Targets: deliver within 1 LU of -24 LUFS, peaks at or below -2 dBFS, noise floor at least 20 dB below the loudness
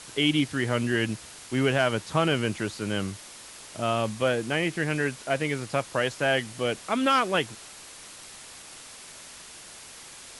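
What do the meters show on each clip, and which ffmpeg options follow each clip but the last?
noise floor -46 dBFS; noise floor target -47 dBFS; loudness -26.5 LUFS; peak -10.0 dBFS; loudness target -24.0 LUFS
-> -af "afftdn=nr=6:nf=-46"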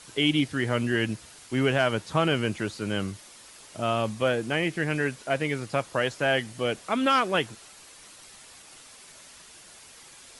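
noise floor -50 dBFS; loudness -26.5 LUFS; peak -10.5 dBFS; loudness target -24.0 LUFS
-> -af "volume=2.5dB"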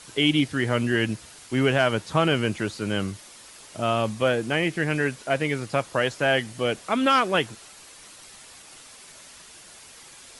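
loudness -24.0 LUFS; peak -8.0 dBFS; noise floor -47 dBFS

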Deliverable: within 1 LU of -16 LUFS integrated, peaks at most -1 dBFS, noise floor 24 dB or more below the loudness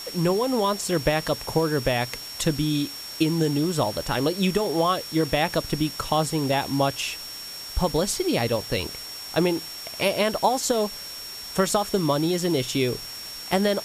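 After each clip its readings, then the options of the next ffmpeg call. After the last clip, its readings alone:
steady tone 5500 Hz; tone level -36 dBFS; noise floor -37 dBFS; noise floor target -49 dBFS; loudness -25.0 LUFS; peak -8.0 dBFS; loudness target -16.0 LUFS
-> -af "bandreject=f=5.5k:w=30"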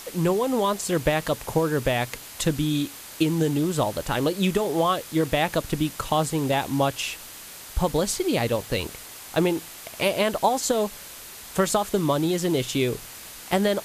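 steady tone none; noise floor -42 dBFS; noise floor target -49 dBFS
-> -af "afftdn=nr=7:nf=-42"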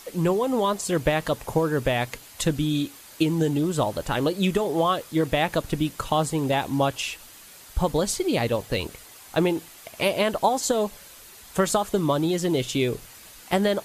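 noise floor -47 dBFS; noise floor target -49 dBFS
-> -af "afftdn=nr=6:nf=-47"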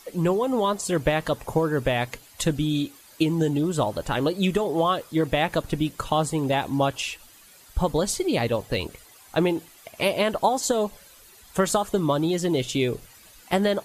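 noise floor -51 dBFS; loudness -25.0 LUFS; peak -8.0 dBFS; loudness target -16.0 LUFS
-> -af "volume=9dB,alimiter=limit=-1dB:level=0:latency=1"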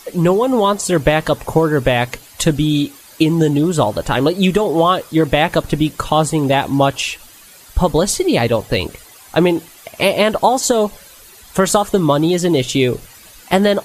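loudness -16.0 LUFS; peak -1.0 dBFS; noise floor -42 dBFS

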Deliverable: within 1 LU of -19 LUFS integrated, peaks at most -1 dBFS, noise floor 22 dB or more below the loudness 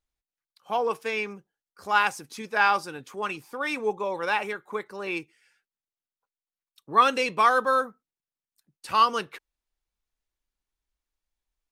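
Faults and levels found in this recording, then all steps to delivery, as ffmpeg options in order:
loudness -25.5 LUFS; peak -6.5 dBFS; loudness target -19.0 LUFS
-> -af "volume=6.5dB,alimiter=limit=-1dB:level=0:latency=1"

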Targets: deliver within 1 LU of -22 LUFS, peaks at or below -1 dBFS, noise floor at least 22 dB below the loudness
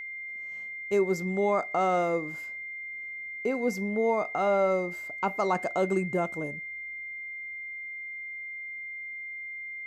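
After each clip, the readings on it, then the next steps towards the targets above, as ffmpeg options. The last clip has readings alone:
steady tone 2100 Hz; tone level -36 dBFS; loudness -30.5 LUFS; peak -14.0 dBFS; loudness target -22.0 LUFS
-> -af "bandreject=f=2.1k:w=30"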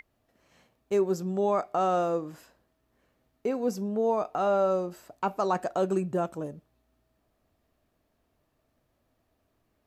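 steady tone none; loudness -28.5 LUFS; peak -15.0 dBFS; loudness target -22.0 LUFS
-> -af "volume=6.5dB"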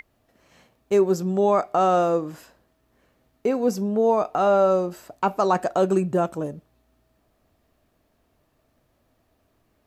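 loudness -22.0 LUFS; peak -8.5 dBFS; noise floor -68 dBFS

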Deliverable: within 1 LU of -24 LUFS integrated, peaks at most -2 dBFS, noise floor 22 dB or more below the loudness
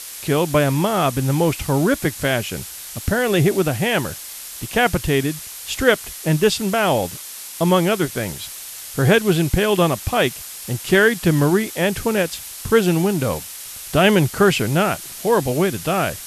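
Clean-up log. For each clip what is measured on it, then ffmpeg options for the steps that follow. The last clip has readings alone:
noise floor -35 dBFS; noise floor target -41 dBFS; loudness -19.0 LUFS; peak -1.0 dBFS; loudness target -24.0 LUFS
-> -af "afftdn=nr=6:nf=-35"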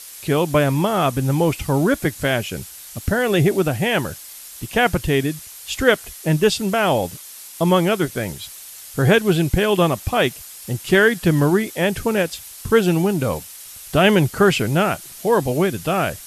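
noise floor -39 dBFS; noise floor target -41 dBFS
-> -af "afftdn=nr=6:nf=-39"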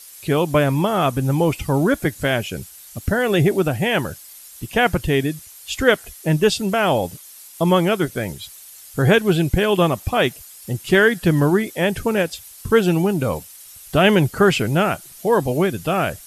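noise floor -42 dBFS; loudness -19.0 LUFS; peak -1.5 dBFS; loudness target -24.0 LUFS
-> -af "volume=-5dB"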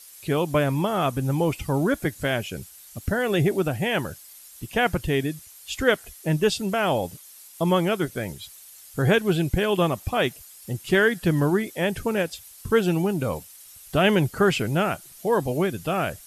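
loudness -24.0 LUFS; peak -6.5 dBFS; noise floor -47 dBFS

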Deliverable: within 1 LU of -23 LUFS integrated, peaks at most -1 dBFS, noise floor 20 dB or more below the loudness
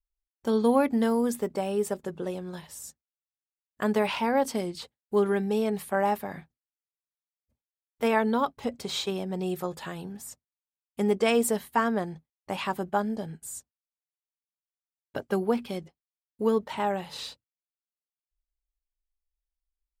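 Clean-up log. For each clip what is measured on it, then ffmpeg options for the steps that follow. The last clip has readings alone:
loudness -28.5 LUFS; peak -10.0 dBFS; loudness target -23.0 LUFS
-> -af "volume=5.5dB"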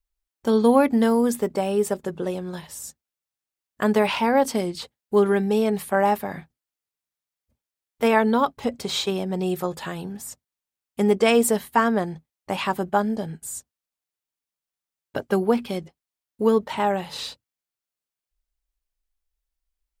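loudness -23.0 LUFS; peak -4.5 dBFS; noise floor -90 dBFS

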